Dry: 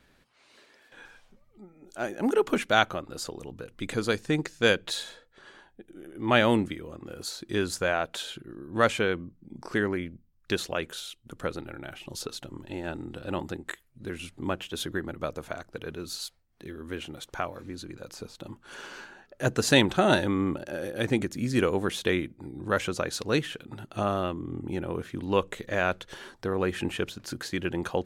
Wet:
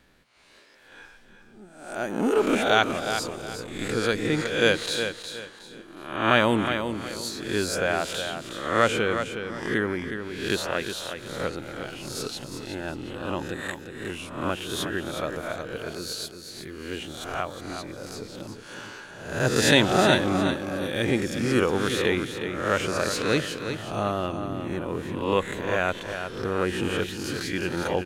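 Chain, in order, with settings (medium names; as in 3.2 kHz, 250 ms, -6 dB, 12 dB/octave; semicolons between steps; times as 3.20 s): reverse spectral sustain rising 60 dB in 0.69 s; feedback delay 364 ms, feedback 30%, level -8 dB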